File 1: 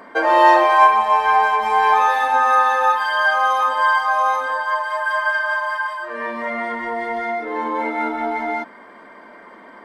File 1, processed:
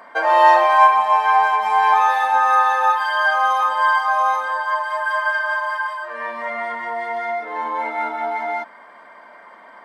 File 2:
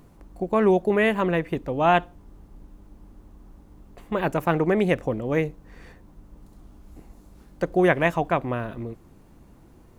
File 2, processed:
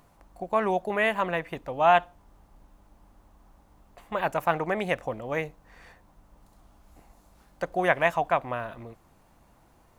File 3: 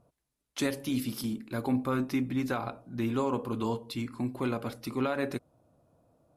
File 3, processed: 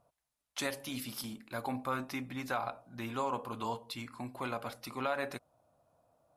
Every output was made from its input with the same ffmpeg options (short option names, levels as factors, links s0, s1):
-af "lowshelf=f=510:t=q:w=1.5:g=-8,volume=0.841"